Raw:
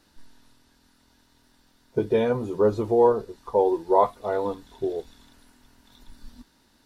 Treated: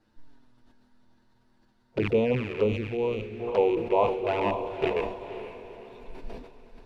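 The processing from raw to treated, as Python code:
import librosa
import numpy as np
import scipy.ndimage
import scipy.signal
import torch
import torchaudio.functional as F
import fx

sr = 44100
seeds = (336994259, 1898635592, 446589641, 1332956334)

y = fx.rattle_buzz(x, sr, strikes_db=-38.0, level_db=-17.0)
y = fx.lowpass(y, sr, hz=1200.0, slope=6)
y = fx.env_flanger(y, sr, rest_ms=9.0, full_db=-18.5)
y = fx.echo_diffused(y, sr, ms=504, feedback_pct=41, wet_db=-11)
y = fx.rider(y, sr, range_db=5, speed_s=0.5)
y = fx.peak_eq(y, sr, hz=740.0, db=-8.5, octaves=1.8, at=(2.64, 3.4))
y = fx.sustainer(y, sr, db_per_s=77.0)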